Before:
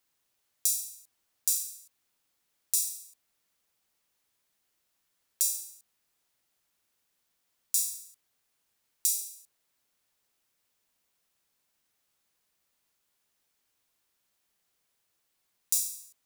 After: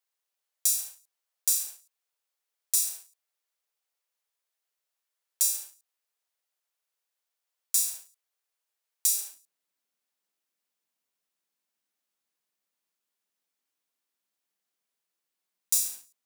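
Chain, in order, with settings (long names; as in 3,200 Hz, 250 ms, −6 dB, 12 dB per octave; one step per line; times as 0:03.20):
leveller curve on the samples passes 2
Butterworth high-pass 410 Hz 36 dB per octave, from 0:09.31 160 Hz
level −4.5 dB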